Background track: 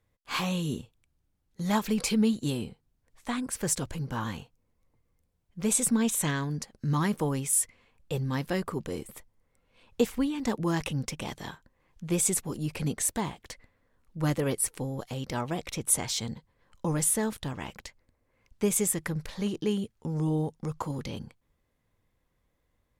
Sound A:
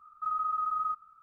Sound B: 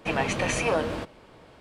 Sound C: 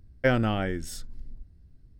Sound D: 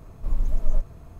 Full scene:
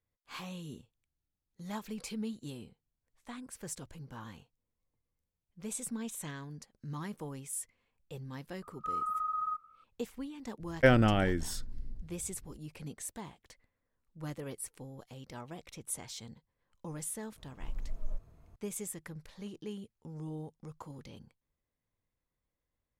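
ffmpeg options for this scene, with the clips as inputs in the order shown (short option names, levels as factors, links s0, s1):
-filter_complex "[0:a]volume=0.211[s0];[1:a]atrim=end=1.22,asetpts=PTS-STARTPTS,volume=0.668,afade=t=in:d=0.004:c=hsin,afade=t=out:st=1.216:d=0.004:c=hsin,adelay=8620[s1];[3:a]atrim=end=1.99,asetpts=PTS-STARTPTS,afade=t=in:d=0.02,afade=t=out:st=1.97:d=0.02,adelay=10590[s2];[4:a]atrim=end=1.19,asetpts=PTS-STARTPTS,volume=0.178,afade=t=in:d=0.004:c=hsin,afade=t=out:st=1.186:d=0.004:c=hsin,adelay=17370[s3];[s0][s1][s2][s3]amix=inputs=4:normalize=0"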